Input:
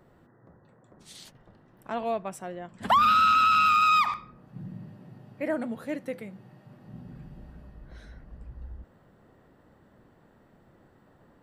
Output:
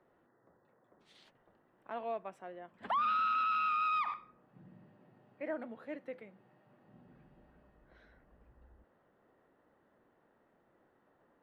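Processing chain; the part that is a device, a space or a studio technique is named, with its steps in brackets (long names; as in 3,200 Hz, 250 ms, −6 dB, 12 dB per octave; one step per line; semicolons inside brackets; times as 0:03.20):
DJ mixer with the lows and highs turned down (three-way crossover with the lows and the highs turned down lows −13 dB, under 270 Hz, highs −21 dB, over 3,500 Hz; brickwall limiter −17.5 dBFS, peak gain reduction 5 dB)
level −8.5 dB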